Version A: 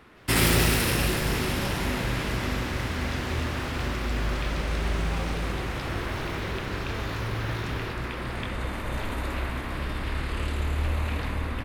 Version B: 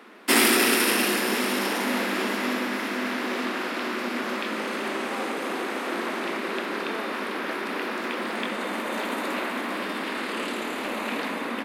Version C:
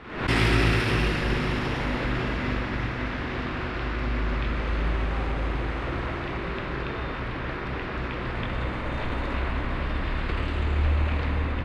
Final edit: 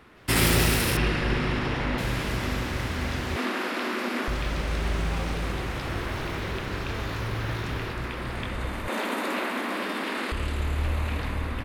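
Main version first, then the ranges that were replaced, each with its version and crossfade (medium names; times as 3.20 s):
A
0.97–1.98 s: from C
3.36–4.28 s: from B
8.88–10.32 s: from B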